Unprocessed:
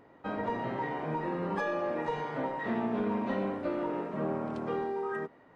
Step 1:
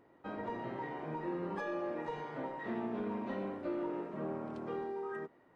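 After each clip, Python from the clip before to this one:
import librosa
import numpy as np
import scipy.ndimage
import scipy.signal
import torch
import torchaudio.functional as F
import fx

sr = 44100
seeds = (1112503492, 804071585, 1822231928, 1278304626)

y = fx.peak_eq(x, sr, hz=350.0, db=6.5, octaves=0.21)
y = y * 10.0 ** (-7.5 / 20.0)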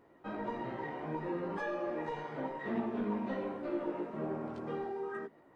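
y = fx.chorus_voices(x, sr, voices=6, hz=1.5, base_ms=16, depth_ms=3.0, mix_pct=40)
y = y * 10.0 ** (4.5 / 20.0)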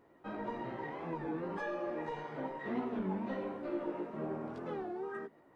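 y = fx.record_warp(x, sr, rpm=33.33, depth_cents=160.0)
y = y * 10.0 ** (-1.5 / 20.0)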